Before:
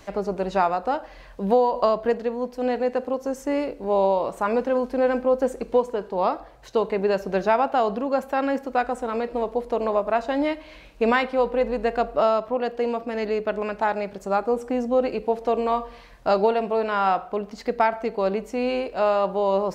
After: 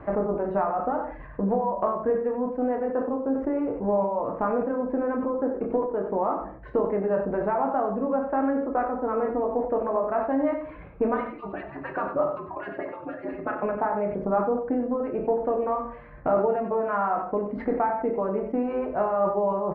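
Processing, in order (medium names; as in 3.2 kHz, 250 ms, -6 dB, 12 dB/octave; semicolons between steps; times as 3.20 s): 11.14–13.63 s: harmonic-percussive separation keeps percussive; low-pass 1.6 kHz 24 dB/octave; reverb removal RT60 0.67 s; high-pass 110 Hz 6 dB/octave; bass shelf 220 Hz +7.5 dB; compression 4:1, threshold -32 dBFS, peak gain reduction 16 dB; delay 94 ms -9.5 dB; simulated room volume 57 m³, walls mixed, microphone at 0.47 m; decay stretcher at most 78 dB/s; trim +5.5 dB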